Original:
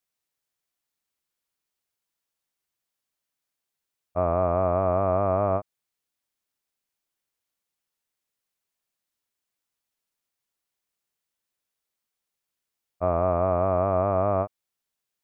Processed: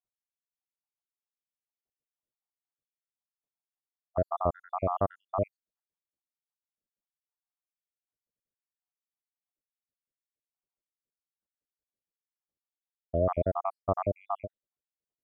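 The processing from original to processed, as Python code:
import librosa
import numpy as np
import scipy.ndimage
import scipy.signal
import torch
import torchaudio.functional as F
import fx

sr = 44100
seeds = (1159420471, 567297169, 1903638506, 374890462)

y = fx.spec_dropout(x, sr, seeds[0], share_pct=80)
y = fx.env_lowpass(y, sr, base_hz=630.0, full_db=-27.0)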